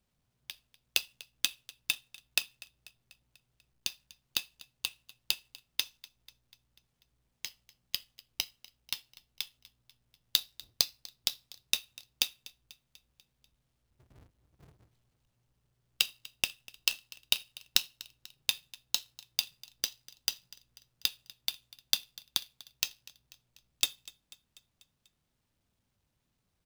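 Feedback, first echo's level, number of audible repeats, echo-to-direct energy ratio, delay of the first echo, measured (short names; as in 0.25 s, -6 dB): 59%, -21.0 dB, 4, -19.0 dB, 0.245 s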